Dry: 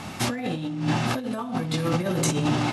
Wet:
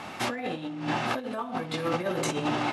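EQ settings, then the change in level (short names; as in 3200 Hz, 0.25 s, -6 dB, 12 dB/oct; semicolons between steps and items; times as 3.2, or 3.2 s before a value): tone controls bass -13 dB, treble -9 dB; 0.0 dB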